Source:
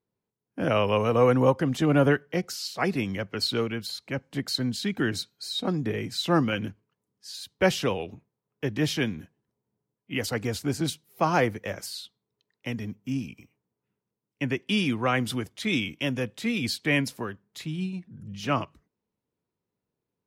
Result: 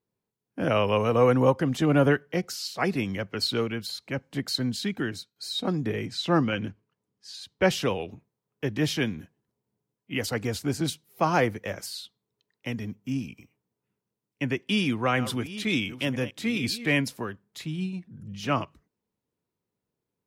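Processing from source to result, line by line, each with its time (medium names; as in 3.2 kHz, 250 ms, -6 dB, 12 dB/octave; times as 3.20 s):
4.82–5.36 s: fade out, to -14.5 dB
6.06–7.71 s: distance through air 50 m
14.67–17.00 s: chunks repeated in reverse 496 ms, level -13 dB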